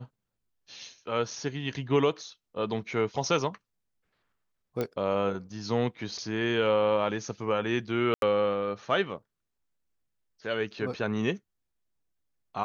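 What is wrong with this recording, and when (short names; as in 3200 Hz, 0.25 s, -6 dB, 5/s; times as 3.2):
4.81 pop -17 dBFS
8.14–8.22 gap 82 ms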